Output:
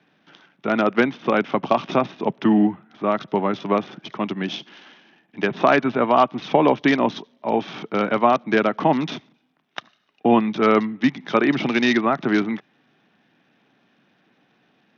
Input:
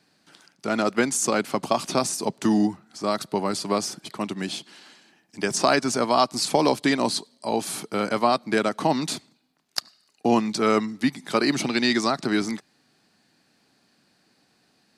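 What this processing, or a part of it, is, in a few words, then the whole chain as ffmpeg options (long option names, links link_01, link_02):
Bluetooth headset: -filter_complex "[0:a]asplit=3[link_01][link_02][link_03];[link_01]afade=type=out:start_time=11.48:duration=0.02[link_04];[link_02]lowpass=frequency=6600:width=0.5412,lowpass=frequency=6600:width=1.3066,afade=type=in:start_time=11.48:duration=0.02,afade=type=out:start_time=12.05:duration=0.02[link_05];[link_03]afade=type=in:start_time=12.05:duration=0.02[link_06];[link_04][link_05][link_06]amix=inputs=3:normalize=0,highpass=frequency=110:width=0.5412,highpass=frequency=110:width=1.3066,aresample=8000,aresample=44100,volume=4dB" -ar 48000 -c:a sbc -b:a 64k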